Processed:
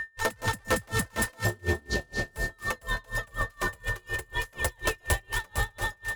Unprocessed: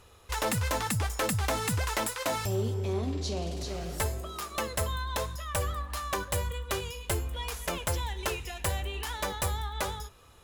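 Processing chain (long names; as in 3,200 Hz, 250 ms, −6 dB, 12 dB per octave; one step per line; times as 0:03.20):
time stretch by overlap-add 0.59×, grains 27 ms
steady tone 1,800 Hz −34 dBFS
on a send: delay that swaps between a low-pass and a high-pass 132 ms, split 1,600 Hz, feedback 85%, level −10 dB
on the sum: tremolo with a sine in dB 4.1 Hz, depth 34 dB
level +6.5 dB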